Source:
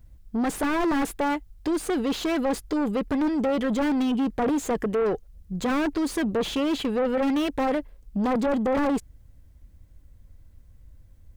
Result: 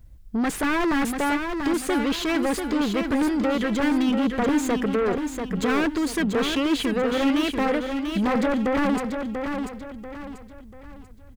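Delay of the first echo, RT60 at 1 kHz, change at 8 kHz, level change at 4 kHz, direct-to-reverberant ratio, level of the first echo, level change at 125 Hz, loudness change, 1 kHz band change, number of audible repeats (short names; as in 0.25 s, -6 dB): 0.689 s, none, +3.5 dB, +5.0 dB, none, -6.0 dB, +3.0 dB, +2.0 dB, +1.5 dB, 4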